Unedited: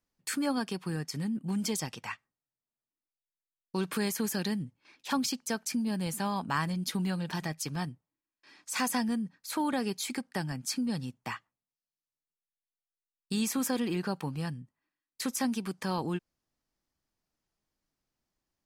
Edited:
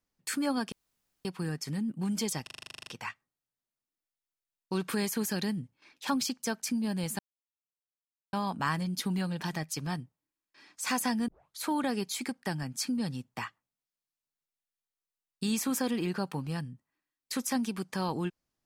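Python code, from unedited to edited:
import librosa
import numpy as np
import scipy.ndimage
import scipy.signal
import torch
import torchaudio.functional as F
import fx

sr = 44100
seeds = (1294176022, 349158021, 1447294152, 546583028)

y = fx.edit(x, sr, fx.insert_room_tone(at_s=0.72, length_s=0.53),
    fx.stutter(start_s=1.9, slice_s=0.04, count=12),
    fx.insert_silence(at_s=6.22, length_s=1.14),
    fx.tape_start(start_s=9.17, length_s=0.32), tone=tone)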